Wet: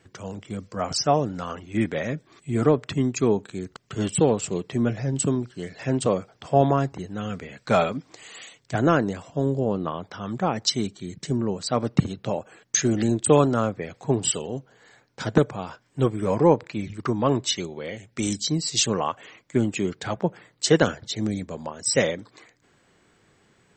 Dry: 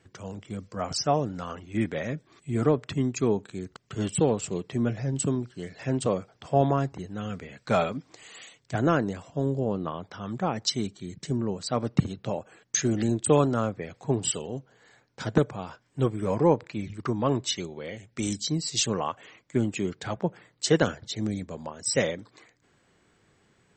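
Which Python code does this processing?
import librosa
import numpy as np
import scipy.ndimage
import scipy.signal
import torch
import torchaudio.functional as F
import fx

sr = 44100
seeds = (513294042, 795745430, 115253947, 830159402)

y = fx.peak_eq(x, sr, hz=60.0, db=-2.5, octaves=2.7)
y = F.gain(torch.from_numpy(y), 4.0).numpy()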